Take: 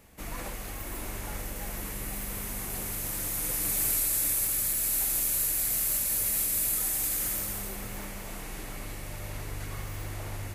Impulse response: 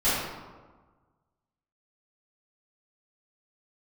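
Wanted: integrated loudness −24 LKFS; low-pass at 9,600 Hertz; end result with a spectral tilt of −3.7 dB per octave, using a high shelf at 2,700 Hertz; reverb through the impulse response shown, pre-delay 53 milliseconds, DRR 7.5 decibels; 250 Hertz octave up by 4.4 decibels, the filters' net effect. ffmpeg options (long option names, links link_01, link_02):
-filter_complex "[0:a]lowpass=9600,equalizer=frequency=250:width_type=o:gain=6,highshelf=frequency=2700:gain=-7,asplit=2[link_01][link_02];[1:a]atrim=start_sample=2205,adelay=53[link_03];[link_02][link_03]afir=irnorm=-1:irlink=0,volume=-22dB[link_04];[link_01][link_04]amix=inputs=2:normalize=0,volume=12.5dB"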